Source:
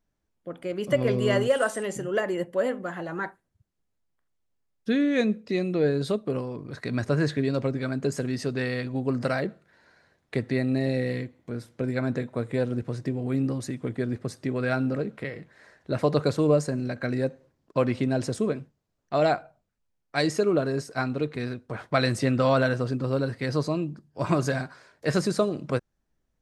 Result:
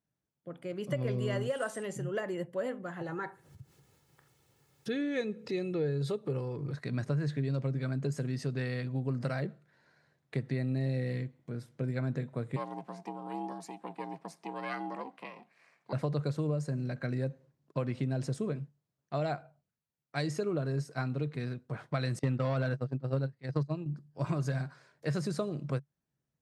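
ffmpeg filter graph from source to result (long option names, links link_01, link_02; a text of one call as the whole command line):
ffmpeg -i in.wav -filter_complex "[0:a]asettb=1/sr,asplit=3[link_01][link_02][link_03];[link_01]atrim=end=3.014[link_04];[link_02]atrim=start=3.01:end=6.72,asetpts=PTS-STARTPTS,afade=type=in:duration=0.004:curve=qsin,afade=type=out:start_time=3.706:duration=0.004:curve=qsin,aecho=1:1:2.3:0.48,atrim=end_sample=163611,acompressor=mode=upward:threshold=-25dB:ratio=2.5:attack=3.2:release=140:knee=2.83:detection=peak[link_05];[link_03]atrim=start=6.716[link_06];[link_04][link_05]acrossfade=duration=0.004:curve1=hsin:curve2=qsin[link_07];[link_07][link_06]acrossfade=duration=0.004:curve1=qsin:curve2=hsin,asettb=1/sr,asplit=3[link_08][link_09][link_10];[link_08]atrim=end=12.564[link_11];[link_09]atrim=start=12.56:end=15.93,asetpts=PTS-STARTPTS,afade=type=in:duration=0.004:curve=qsin,afade=type=out:start_time=3.366:duration=0.004:curve=qsin,lowshelf=frequency=120:gain=-8.5,afreqshift=310,aeval=exprs='val(0)*sin(2*PI*250*n/s)':channel_layout=same[link_12];[link_10]atrim=start=15.926[link_13];[link_11][link_12]acrossfade=duration=0.004:curve1=hsin:curve2=qsin[link_14];[link_14][link_13]acrossfade=duration=0.004:curve1=qsin:curve2=hsin,asettb=1/sr,asplit=3[link_15][link_16][link_17];[link_15]atrim=end=22.194[link_18];[link_16]atrim=start=22.19:end=23.86,asetpts=PTS-STARTPTS,afade=type=in:duration=0.004:curve=qsin,afade=type=out:start_time=1.666:duration=0.004:curve=qsin,agate=range=-28dB:threshold=-26dB:ratio=16:release=100:detection=peak,aeval=exprs='0.335*sin(PI/2*1.41*val(0)/0.335)':channel_layout=same,highshelf=frequency=8100:gain=-8[link_19];[link_17]atrim=start=23.856[link_20];[link_18][link_19]acrossfade=duration=0.004:curve1=hsin:curve2=qsin[link_21];[link_21][link_20]acrossfade=duration=0.004:curve1=qsin:curve2=hsin,highpass=95,equalizer=frequency=140:width=3.2:gain=12.5,acompressor=threshold=-20dB:ratio=6,volume=-8dB" out.wav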